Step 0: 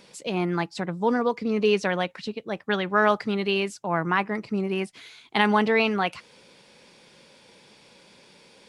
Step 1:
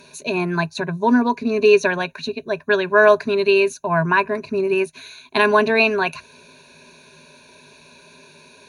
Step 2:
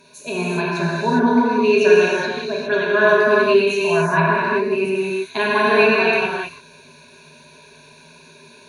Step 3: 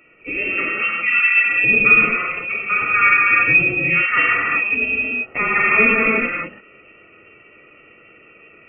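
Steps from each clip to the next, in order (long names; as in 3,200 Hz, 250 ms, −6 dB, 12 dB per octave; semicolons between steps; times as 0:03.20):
EQ curve with evenly spaced ripples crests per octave 1.5, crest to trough 17 dB; level +3 dB
reverb whose tail is shaped and stops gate 430 ms flat, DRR −6.5 dB; level −6 dB
voice inversion scrambler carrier 2,900 Hz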